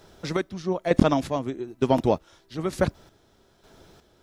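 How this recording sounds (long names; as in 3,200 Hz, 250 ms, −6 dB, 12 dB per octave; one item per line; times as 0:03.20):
a quantiser's noise floor 12 bits, dither none
chopped level 1.1 Hz, depth 60%, duty 40%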